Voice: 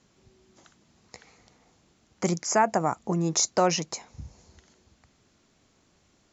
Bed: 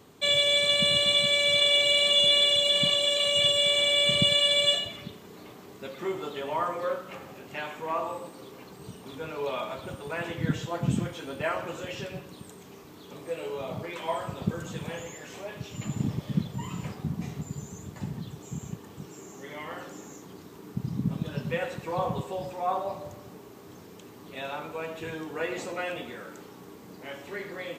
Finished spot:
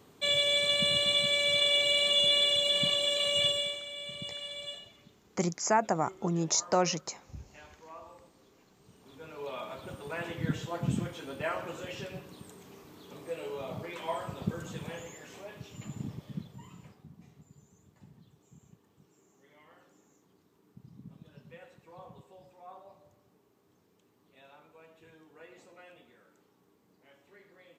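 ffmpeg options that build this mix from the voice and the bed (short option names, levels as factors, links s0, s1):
-filter_complex "[0:a]adelay=3150,volume=0.631[s0];[1:a]volume=3.16,afade=t=out:st=3.44:d=0.36:silence=0.199526,afade=t=in:st=8.84:d=1.2:silence=0.199526,afade=t=out:st=14.7:d=2.37:silence=0.141254[s1];[s0][s1]amix=inputs=2:normalize=0"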